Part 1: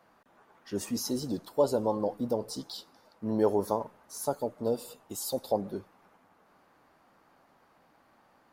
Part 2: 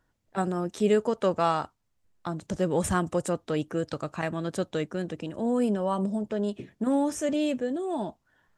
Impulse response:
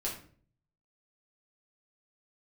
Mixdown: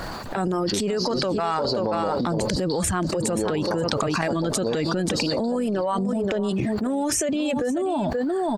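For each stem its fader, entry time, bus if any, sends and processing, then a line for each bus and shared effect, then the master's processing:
-13.0 dB, 0.00 s, send -15.5 dB, echo send -19 dB, resonant low-pass 4.5 kHz, resonance Q 13; treble shelf 2.2 kHz -9 dB
-2.0 dB, 0.00 s, no send, echo send -15 dB, reverb removal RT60 1.4 s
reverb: on, RT60 0.45 s, pre-delay 5 ms
echo: delay 529 ms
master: transient shaper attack -7 dB, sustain +7 dB; level flattener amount 100%

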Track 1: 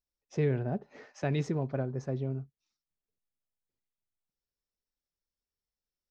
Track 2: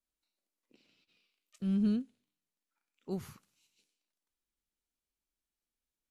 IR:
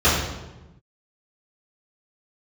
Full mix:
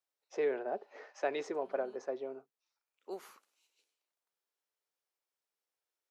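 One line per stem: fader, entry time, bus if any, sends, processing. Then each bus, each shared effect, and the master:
-4.0 dB, 0.00 s, no send, none
-4.0 dB, 0.00 s, no send, auto duck -15 dB, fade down 1.65 s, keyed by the first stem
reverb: none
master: high-pass 370 Hz 24 dB/octave; peaking EQ 820 Hz +6.5 dB 2.7 oct

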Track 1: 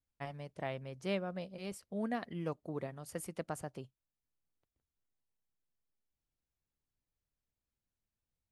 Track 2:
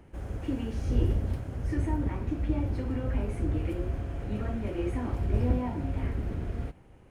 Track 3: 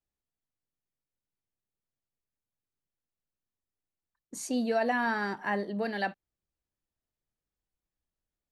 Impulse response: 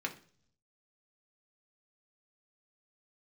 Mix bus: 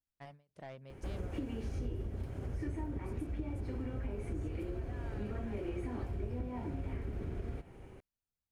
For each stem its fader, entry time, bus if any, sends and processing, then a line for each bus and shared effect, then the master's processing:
-6.0 dB, 0.00 s, no send, saturation -34 dBFS, distortion -13 dB; endings held to a fixed fall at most 170 dB/s
+2.0 dB, 0.90 s, no send, de-hum 171.6 Hz, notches 32; small resonant body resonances 390/2300 Hz, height 7 dB
-19.0 dB, 0.00 s, no send, none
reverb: none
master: compression 6:1, threshold -36 dBFS, peak gain reduction 18 dB

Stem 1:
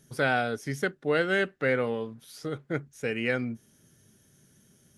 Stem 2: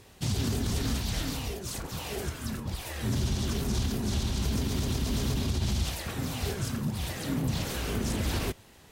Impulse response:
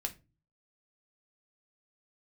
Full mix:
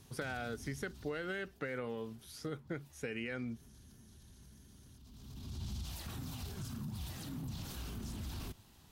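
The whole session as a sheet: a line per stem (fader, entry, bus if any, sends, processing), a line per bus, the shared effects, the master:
-4.0 dB, 0.00 s, no send, peaking EQ 610 Hz -3 dB; peak limiter -19.5 dBFS, peak gain reduction 7.5 dB
-4.0 dB, 0.00 s, no send, peak limiter -29 dBFS, peak gain reduction 10 dB; graphic EQ 500/2000/8000 Hz -12/-9/-4 dB; auto duck -18 dB, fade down 1.70 s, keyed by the first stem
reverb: none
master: compression, threshold -36 dBFS, peak gain reduction 7.5 dB

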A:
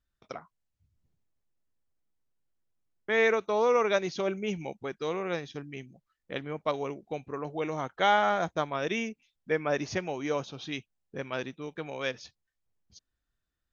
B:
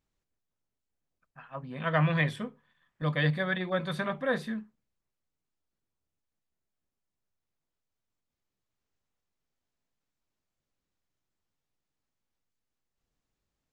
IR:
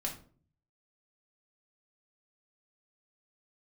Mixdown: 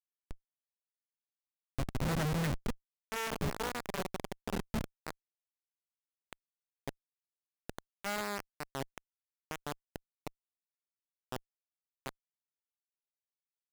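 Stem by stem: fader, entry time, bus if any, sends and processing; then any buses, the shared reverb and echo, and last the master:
-1.5 dB, 0.00 s, no send, partial rectifier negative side -12 dB; harmonic-percussive split harmonic +4 dB
-5.5 dB, 0.25 s, send -9 dB, compression 3:1, threshold -39 dBFS, peak gain reduction 13 dB; auto duck -9 dB, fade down 0.70 s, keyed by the first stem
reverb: on, RT60 0.45 s, pre-delay 4 ms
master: bass shelf 80 Hz +6.5 dB; de-hum 210 Hz, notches 2; Schmitt trigger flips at -40 dBFS

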